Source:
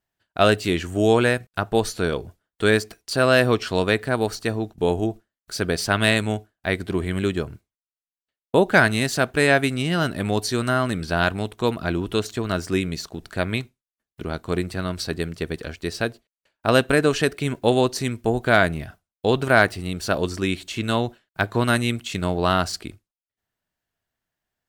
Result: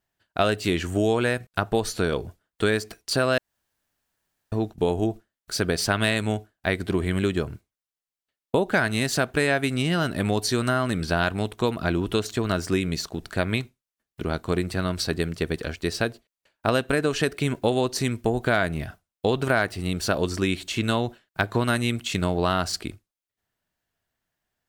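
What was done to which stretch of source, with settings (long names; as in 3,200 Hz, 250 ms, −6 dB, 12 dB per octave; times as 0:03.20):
0:03.38–0:04.52: fill with room tone
whole clip: downward compressor 4 to 1, threshold −21 dBFS; level +2 dB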